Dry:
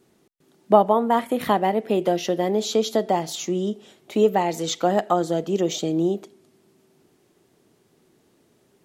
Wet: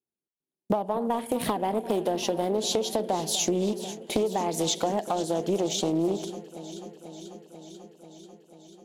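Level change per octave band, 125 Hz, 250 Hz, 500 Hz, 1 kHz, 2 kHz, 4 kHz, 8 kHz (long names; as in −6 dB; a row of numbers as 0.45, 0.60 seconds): −4.5, −4.5, −6.0, −7.5, −6.5, 0.0, +2.5 decibels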